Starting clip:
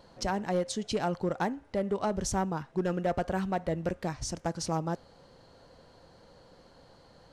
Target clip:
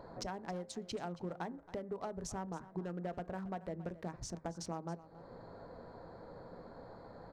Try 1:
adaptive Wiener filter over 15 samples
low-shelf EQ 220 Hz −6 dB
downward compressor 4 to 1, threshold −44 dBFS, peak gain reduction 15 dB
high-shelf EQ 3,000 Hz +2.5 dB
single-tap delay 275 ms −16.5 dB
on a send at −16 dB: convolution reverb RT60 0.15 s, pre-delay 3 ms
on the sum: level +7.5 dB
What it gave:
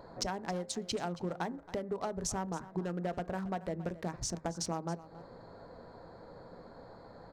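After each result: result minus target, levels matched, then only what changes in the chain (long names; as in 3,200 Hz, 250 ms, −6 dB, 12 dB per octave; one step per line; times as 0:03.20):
downward compressor: peak gain reduction −5 dB; 8,000 Hz band +3.0 dB
change: downward compressor 4 to 1, threshold −50.5 dBFS, peak gain reduction 20 dB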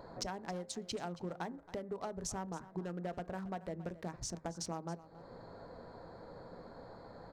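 8,000 Hz band +4.5 dB
change: high-shelf EQ 3,000 Hz −3.5 dB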